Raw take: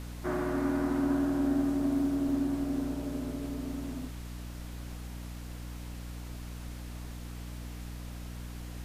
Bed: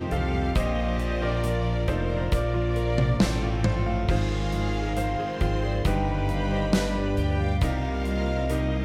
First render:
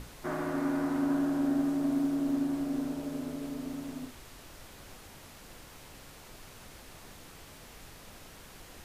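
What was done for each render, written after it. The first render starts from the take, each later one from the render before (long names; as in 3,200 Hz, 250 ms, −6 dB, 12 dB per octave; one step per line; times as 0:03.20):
mains-hum notches 60/120/180/240/300/360 Hz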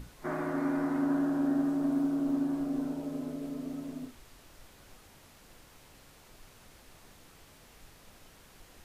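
noise reduction from a noise print 6 dB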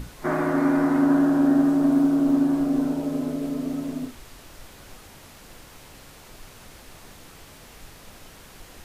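level +10 dB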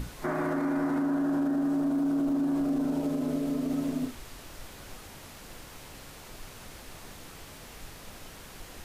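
brickwall limiter −22 dBFS, peak gain reduction 11.5 dB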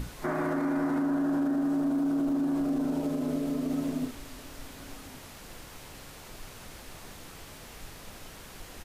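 slap from a distant wall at 190 metres, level −22 dB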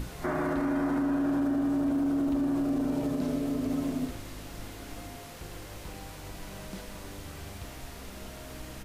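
mix in bed −20 dB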